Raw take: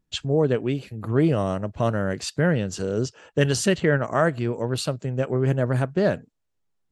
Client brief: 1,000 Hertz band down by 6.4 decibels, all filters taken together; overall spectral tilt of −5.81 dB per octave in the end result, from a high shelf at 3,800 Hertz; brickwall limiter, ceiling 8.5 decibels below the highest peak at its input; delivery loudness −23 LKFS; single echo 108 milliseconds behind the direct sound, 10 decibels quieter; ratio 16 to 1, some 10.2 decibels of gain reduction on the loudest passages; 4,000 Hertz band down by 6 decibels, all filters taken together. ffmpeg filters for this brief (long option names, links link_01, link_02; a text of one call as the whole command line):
ffmpeg -i in.wav -af "equalizer=frequency=1000:width_type=o:gain=-9,highshelf=frequency=3800:gain=-3,equalizer=frequency=4000:width_type=o:gain=-5.5,acompressor=threshold=-26dB:ratio=16,alimiter=level_in=0.5dB:limit=-24dB:level=0:latency=1,volume=-0.5dB,aecho=1:1:108:0.316,volume=11.5dB" out.wav